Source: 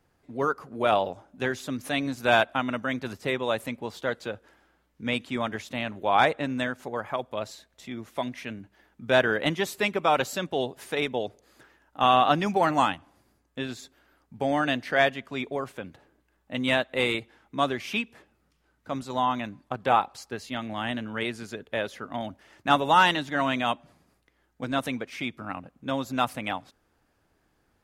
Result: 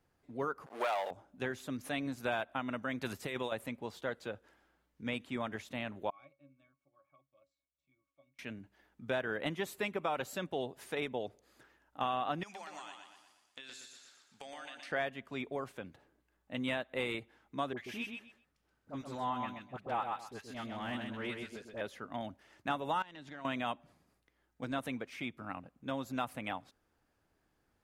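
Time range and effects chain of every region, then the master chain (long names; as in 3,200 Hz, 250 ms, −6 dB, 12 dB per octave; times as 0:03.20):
0:00.66–0:01.11: leveller curve on the samples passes 3 + high-pass filter 730 Hz
0:03.01–0:03.52: high-shelf EQ 2,300 Hz +9 dB + compressor whose output falls as the input rises −29 dBFS
0:06.10–0:08.39: first-order pre-emphasis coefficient 0.9 + resonances in every octave C#, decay 0.15 s
0:12.43–0:14.92: meter weighting curve ITU-R 468 + downward compressor 20 to 1, threshold −36 dBFS + repeating echo 119 ms, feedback 50%, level −5.5 dB
0:17.73–0:21.81: transient designer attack −9 dB, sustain −5 dB + all-pass dispersion highs, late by 45 ms, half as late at 1,000 Hz + repeating echo 128 ms, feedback 19%, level −5.5 dB
0:23.02–0:23.45: low-pass filter 7,700 Hz + downward compressor 5 to 1, threshold −34 dBFS + tube saturation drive 18 dB, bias 0.65
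whole clip: dynamic equaliser 5,200 Hz, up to −6 dB, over −47 dBFS, Q 1.2; downward compressor 6 to 1, threshold −23 dBFS; level −7.5 dB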